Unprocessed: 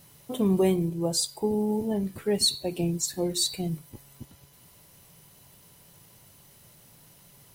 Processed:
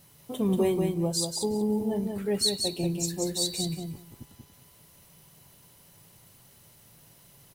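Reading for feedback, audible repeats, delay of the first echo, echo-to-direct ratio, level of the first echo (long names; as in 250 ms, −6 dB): 16%, 2, 185 ms, −4.5 dB, −4.5 dB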